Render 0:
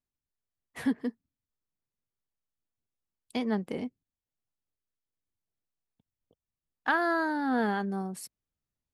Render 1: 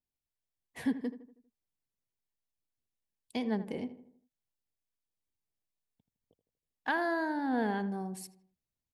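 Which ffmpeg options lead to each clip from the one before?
-filter_complex "[0:a]equalizer=f=1300:w=6.3:g=-13.5,asplit=2[s0][s1];[s1]adelay=80,lowpass=f=1900:p=1,volume=0.237,asplit=2[s2][s3];[s3]adelay=80,lowpass=f=1900:p=1,volume=0.48,asplit=2[s4][s5];[s5]adelay=80,lowpass=f=1900:p=1,volume=0.48,asplit=2[s6][s7];[s7]adelay=80,lowpass=f=1900:p=1,volume=0.48,asplit=2[s8][s9];[s9]adelay=80,lowpass=f=1900:p=1,volume=0.48[s10];[s0][s2][s4][s6][s8][s10]amix=inputs=6:normalize=0,adynamicequalizer=threshold=0.00398:dfrequency=3700:dqfactor=0.7:tfrequency=3700:tqfactor=0.7:attack=5:release=100:ratio=0.375:range=2.5:mode=cutabove:tftype=highshelf,volume=0.708"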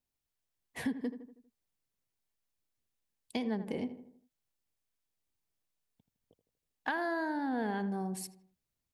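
-af "acompressor=threshold=0.0178:ratio=4,volume=1.5"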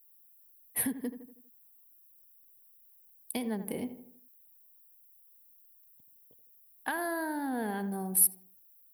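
-af "aexciter=amount=15.1:drive=9.4:freq=10000"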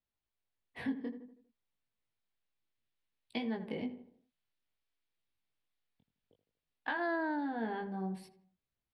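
-filter_complex "[0:a]lowpass=f=4100:w=0.5412,lowpass=f=4100:w=1.3066,acrossover=split=400|1600[s0][s1][s2];[s2]dynaudnorm=f=210:g=21:m=1.68[s3];[s0][s1][s3]amix=inputs=3:normalize=0,flanger=delay=17:depth=5.5:speed=0.58"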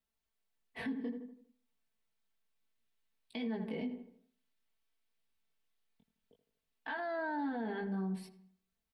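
-filter_complex "[0:a]aecho=1:1:4.5:0.6,alimiter=level_in=2.37:limit=0.0631:level=0:latency=1:release=67,volume=0.422,asplit=2[s0][s1];[s1]adelay=107,lowpass=f=4600:p=1,volume=0.0668,asplit=2[s2][s3];[s3]adelay=107,lowpass=f=4600:p=1,volume=0.5,asplit=2[s4][s5];[s5]adelay=107,lowpass=f=4600:p=1,volume=0.5[s6];[s0][s2][s4][s6]amix=inputs=4:normalize=0,volume=1.12"

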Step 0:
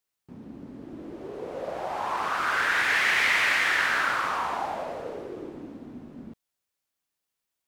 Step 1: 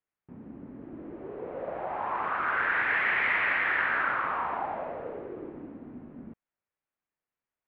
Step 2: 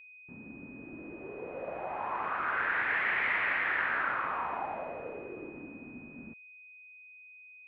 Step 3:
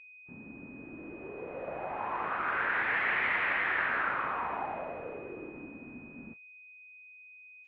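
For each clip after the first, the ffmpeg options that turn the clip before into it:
-af "lowpass=f=2300:w=0.5412,lowpass=f=2300:w=1.3066,volume=0.794"
-af "aeval=exprs='val(0)+0.00447*sin(2*PI*2500*n/s)':c=same,volume=0.668"
-ar 24000 -c:a aac -b:a 24k

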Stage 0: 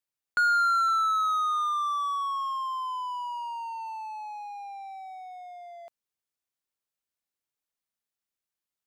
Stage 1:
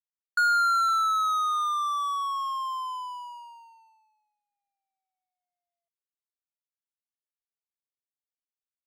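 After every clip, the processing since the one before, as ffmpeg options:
-af "agate=range=0.00355:threshold=0.0224:ratio=16:detection=peak,highshelf=f=4400:g=7"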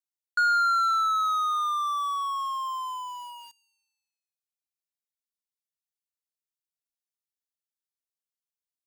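-filter_complex "[0:a]acrossover=split=3000|6500[s0][s1][s2];[s0]aeval=exprs='val(0)*gte(abs(val(0)),0.00668)':c=same[s3];[s2]alimiter=level_in=18.8:limit=0.0631:level=0:latency=1,volume=0.0531[s4];[s3][s1][s4]amix=inputs=3:normalize=0"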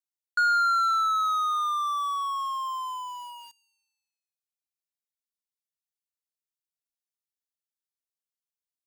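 -af anull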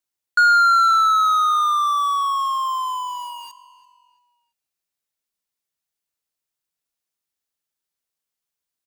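-filter_complex "[0:a]asplit=2[s0][s1];[s1]adelay=338,lowpass=f=4200:p=1,volume=0.126,asplit=2[s2][s3];[s3]adelay=338,lowpass=f=4200:p=1,volume=0.41,asplit=2[s4][s5];[s5]adelay=338,lowpass=f=4200:p=1,volume=0.41[s6];[s0][s2][s4][s6]amix=inputs=4:normalize=0,volume=2.66"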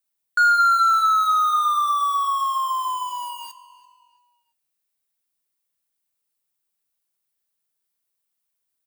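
-filter_complex "[0:a]aexciter=amount=2.3:drive=2.4:freq=8700,flanger=delay=8.2:depth=7.6:regen=-67:speed=0.33:shape=triangular,asplit=2[s0][s1];[s1]asoftclip=type=tanh:threshold=0.0562,volume=0.668[s2];[s0][s2]amix=inputs=2:normalize=0"

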